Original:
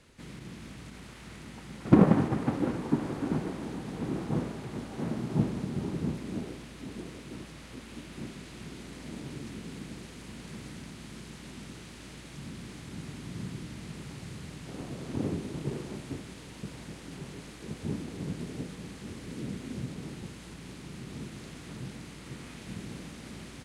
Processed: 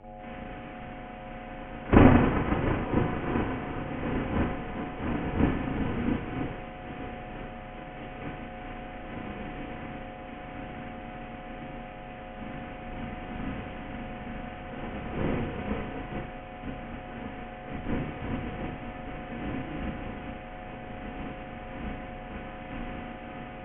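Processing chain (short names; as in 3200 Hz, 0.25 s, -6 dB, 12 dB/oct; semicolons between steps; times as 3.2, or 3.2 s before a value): spectral whitening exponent 0.6; steep low-pass 3100 Hz 96 dB/oct; ring modulator 240 Hz; buzz 100 Hz, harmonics 10, -51 dBFS 0 dB/oct; frequency shift -170 Hz; reverb, pre-delay 34 ms, DRR -6.5 dB; gain -1.5 dB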